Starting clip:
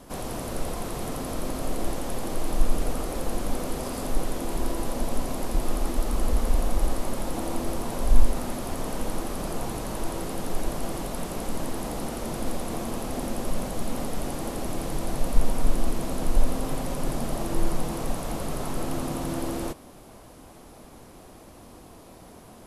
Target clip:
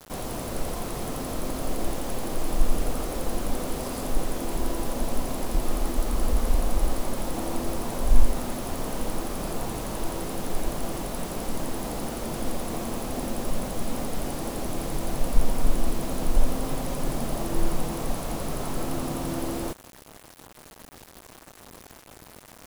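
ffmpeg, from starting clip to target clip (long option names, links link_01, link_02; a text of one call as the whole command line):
ffmpeg -i in.wav -af "acrusher=bits=6:mix=0:aa=0.000001" out.wav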